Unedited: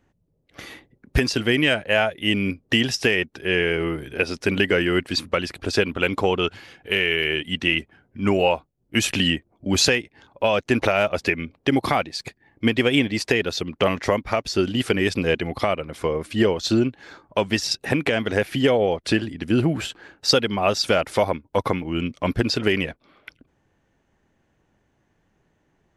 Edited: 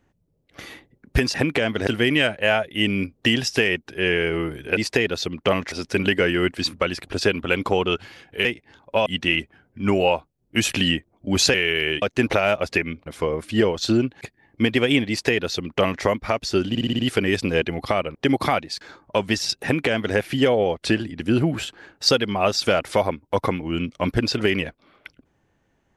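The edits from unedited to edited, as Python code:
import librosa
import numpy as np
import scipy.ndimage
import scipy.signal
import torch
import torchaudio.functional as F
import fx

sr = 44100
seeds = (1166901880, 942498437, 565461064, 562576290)

y = fx.edit(x, sr, fx.swap(start_s=6.97, length_s=0.48, other_s=9.93, other_length_s=0.61),
    fx.swap(start_s=11.58, length_s=0.66, other_s=15.88, other_length_s=1.15),
    fx.duplicate(start_s=13.12, length_s=0.95, to_s=4.24),
    fx.stutter(start_s=14.72, slice_s=0.06, count=6),
    fx.duplicate(start_s=17.85, length_s=0.53, to_s=1.34), tone=tone)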